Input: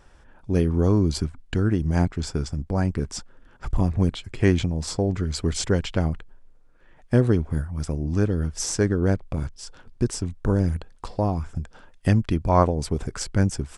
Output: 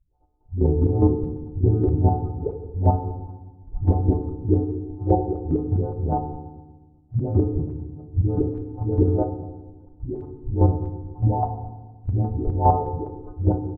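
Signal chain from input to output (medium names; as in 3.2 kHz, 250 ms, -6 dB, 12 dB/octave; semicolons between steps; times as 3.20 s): partials quantised in pitch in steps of 3 st; steep low-pass 920 Hz 48 dB/octave; gate -50 dBFS, range -10 dB; comb 2.5 ms, depth 53%; level held to a coarse grid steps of 23 dB; phase dispersion highs, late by 146 ms, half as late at 300 Hz; square tremolo 4.9 Hz, depth 65%, duty 25%; reverse echo 35 ms -18 dB; FDN reverb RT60 1.2 s, low-frequency decay 1.5×, high-frequency decay 0.75×, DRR 5.5 dB; tape noise reduction on one side only decoder only; trim +8 dB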